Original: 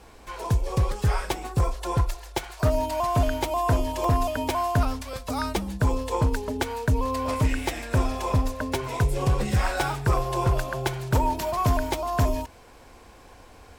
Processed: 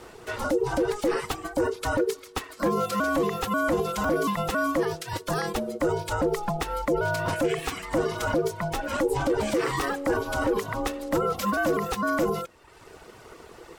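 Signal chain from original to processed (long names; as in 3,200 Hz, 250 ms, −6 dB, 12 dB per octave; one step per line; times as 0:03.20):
reverb reduction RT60 0.96 s
brickwall limiter −23 dBFS, peak gain reduction 8.5 dB
ring modulation 420 Hz
level +7.5 dB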